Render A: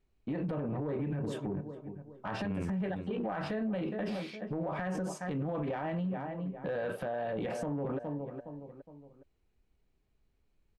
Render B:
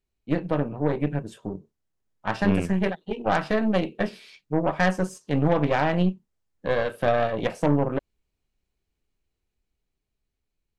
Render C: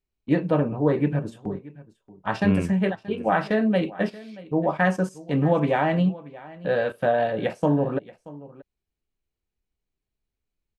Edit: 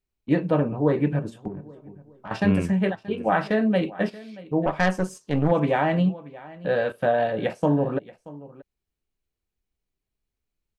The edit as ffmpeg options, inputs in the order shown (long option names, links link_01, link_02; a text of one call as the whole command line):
ffmpeg -i take0.wav -i take1.wav -i take2.wav -filter_complex "[2:a]asplit=3[link_01][link_02][link_03];[link_01]atrim=end=1.482[link_04];[0:a]atrim=start=1.478:end=2.312[link_05];[link_02]atrim=start=2.308:end=4.662[link_06];[1:a]atrim=start=4.658:end=5.512[link_07];[link_03]atrim=start=5.508[link_08];[link_04][link_05]acrossfade=duration=0.004:curve1=hsin:curve2=hsin[link_09];[link_09][link_06]acrossfade=duration=0.004:curve1=hsin:curve2=hsin[link_10];[link_10][link_07]acrossfade=duration=0.004:curve1=hsin:curve2=hsin[link_11];[link_11][link_08]acrossfade=duration=0.004:curve1=hsin:curve2=hsin" out.wav